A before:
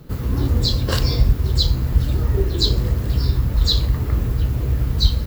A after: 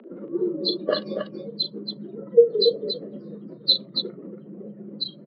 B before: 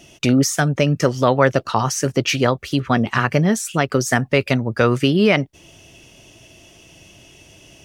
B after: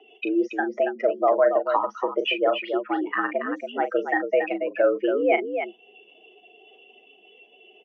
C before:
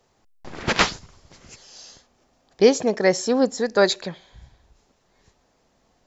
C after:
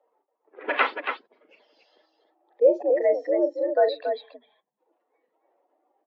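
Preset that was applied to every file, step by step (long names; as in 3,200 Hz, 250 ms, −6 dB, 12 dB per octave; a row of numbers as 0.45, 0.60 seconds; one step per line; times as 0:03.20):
expanding power law on the bin magnitudes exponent 2.2
loudspeakers that aren't time-aligned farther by 13 metres −9 dB, 96 metres −7 dB
single-sideband voice off tune +77 Hz 280–3,200 Hz
loudness normalisation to −24 LKFS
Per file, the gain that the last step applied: +14.0, −3.5, −2.5 decibels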